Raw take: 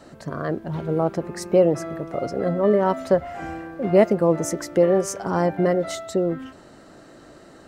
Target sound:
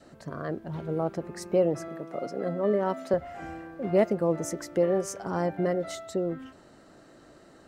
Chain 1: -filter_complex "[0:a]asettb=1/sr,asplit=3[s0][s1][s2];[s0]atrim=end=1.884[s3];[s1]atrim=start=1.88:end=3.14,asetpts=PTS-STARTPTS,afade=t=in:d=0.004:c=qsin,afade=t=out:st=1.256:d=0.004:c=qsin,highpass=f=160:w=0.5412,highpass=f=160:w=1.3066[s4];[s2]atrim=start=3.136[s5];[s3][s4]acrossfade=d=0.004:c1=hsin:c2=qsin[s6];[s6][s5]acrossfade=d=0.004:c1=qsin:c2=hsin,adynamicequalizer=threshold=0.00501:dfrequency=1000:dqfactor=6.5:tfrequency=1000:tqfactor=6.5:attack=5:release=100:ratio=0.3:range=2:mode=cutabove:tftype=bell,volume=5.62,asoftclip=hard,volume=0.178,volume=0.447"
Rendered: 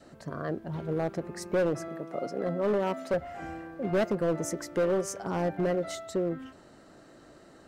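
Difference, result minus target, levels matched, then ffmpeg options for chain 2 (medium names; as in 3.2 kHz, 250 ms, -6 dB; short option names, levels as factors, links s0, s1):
overload inside the chain: distortion +35 dB
-filter_complex "[0:a]asettb=1/sr,asplit=3[s0][s1][s2];[s0]atrim=end=1.884[s3];[s1]atrim=start=1.88:end=3.14,asetpts=PTS-STARTPTS,afade=t=in:d=0.004:c=qsin,afade=t=out:st=1.256:d=0.004:c=qsin,highpass=f=160:w=0.5412,highpass=f=160:w=1.3066[s4];[s2]atrim=start=3.136[s5];[s3][s4]acrossfade=d=0.004:c1=hsin:c2=qsin[s6];[s6][s5]acrossfade=d=0.004:c1=qsin:c2=hsin,adynamicequalizer=threshold=0.00501:dfrequency=1000:dqfactor=6.5:tfrequency=1000:tqfactor=6.5:attack=5:release=100:ratio=0.3:range=2:mode=cutabove:tftype=bell,volume=1.68,asoftclip=hard,volume=0.596,volume=0.447"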